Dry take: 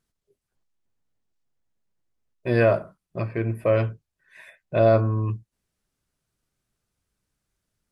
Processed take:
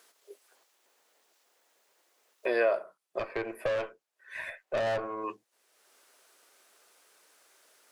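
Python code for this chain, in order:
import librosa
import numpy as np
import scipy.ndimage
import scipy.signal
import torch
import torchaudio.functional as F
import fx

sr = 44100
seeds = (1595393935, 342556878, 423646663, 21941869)

y = scipy.signal.sosfilt(scipy.signal.butter(4, 430.0, 'highpass', fs=sr, output='sos'), x)
y = fx.tube_stage(y, sr, drive_db=27.0, bias=0.55, at=(3.19, 5.24))
y = fx.band_squash(y, sr, depth_pct=70)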